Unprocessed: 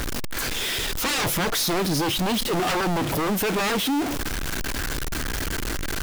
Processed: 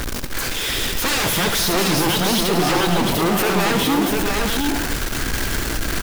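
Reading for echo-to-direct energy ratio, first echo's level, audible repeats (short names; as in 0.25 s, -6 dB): -0.5 dB, -9.0 dB, 5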